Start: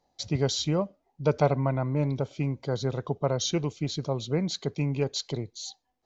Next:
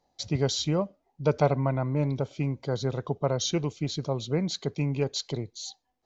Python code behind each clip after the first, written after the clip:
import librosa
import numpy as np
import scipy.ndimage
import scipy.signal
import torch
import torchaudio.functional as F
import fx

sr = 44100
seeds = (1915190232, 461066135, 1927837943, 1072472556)

y = x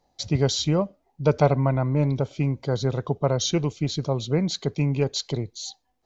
y = fx.low_shelf(x, sr, hz=90.0, db=5.5)
y = y * librosa.db_to_amplitude(3.5)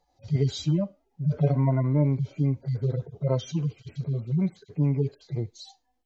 y = fx.hpss_only(x, sr, part='harmonic')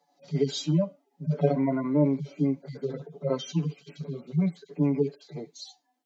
y = scipy.signal.sosfilt(scipy.signal.butter(12, 160.0, 'highpass', fs=sr, output='sos'), x)
y = y + 0.75 * np.pad(y, (int(7.0 * sr / 1000.0), 0))[:len(y)]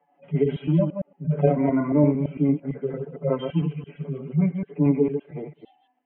y = fx.reverse_delay(x, sr, ms=113, wet_db=-6.0)
y = scipy.signal.sosfilt(scipy.signal.butter(16, 3000.0, 'lowpass', fs=sr, output='sos'), y)
y = y * librosa.db_to_amplitude(3.5)